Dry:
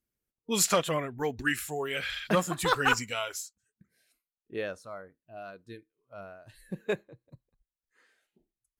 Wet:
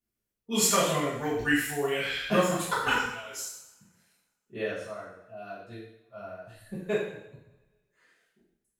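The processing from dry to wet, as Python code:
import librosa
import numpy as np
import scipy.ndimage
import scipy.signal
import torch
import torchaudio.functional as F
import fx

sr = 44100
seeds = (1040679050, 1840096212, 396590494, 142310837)

y = fx.level_steps(x, sr, step_db=23, at=(2.62, 3.33))
y = fx.rev_double_slope(y, sr, seeds[0], early_s=0.76, late_s=2.2, knee_db=-27, drr_db=-10.0)
y = y * librosa.db_to_amplitude(-8.0)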